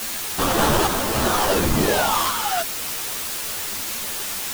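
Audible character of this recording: aliases and images of a low sample rate 2200 Hz, jitter 20%; random-step tremolo, depth 55%; a quantiser's noise floor 6-bit, dither triangular; a shimmering, thickened sound

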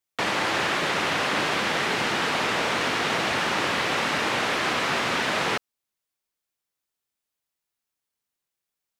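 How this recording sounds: noise floor -86 dBFS; spectral tilt -2.5 dB/oct

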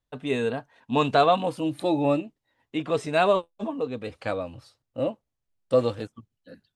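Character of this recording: noise floor -83 dBFS; spectral tilt -4.5 dB/oct

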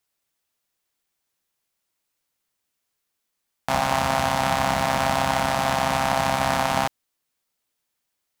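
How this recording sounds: noise floor -79 dBFS; spectral tilt -3.5 dB/oct

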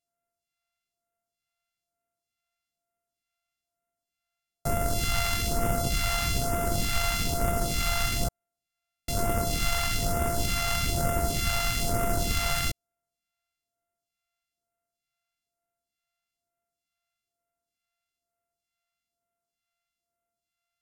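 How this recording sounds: a buzz of ramps at a fixed pitch in blocks of 64 samples; phasing stages 2, 1.1 Hz, lowest notch 310–3900 Hz; AAC

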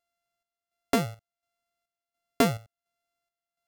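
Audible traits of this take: a buzz of ramps at a fixed pitch in blocks of 64 samples; chopped level 1.4 Hz, depth 60%, duty 60%

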